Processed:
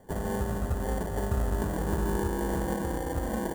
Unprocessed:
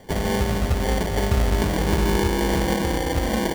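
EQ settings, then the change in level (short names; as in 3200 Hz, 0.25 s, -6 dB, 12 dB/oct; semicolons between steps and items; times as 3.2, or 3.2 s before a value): band shelf 3500 Hz -10.5 dB; notch 2200 Hz, Q 8.3; -8.0 dB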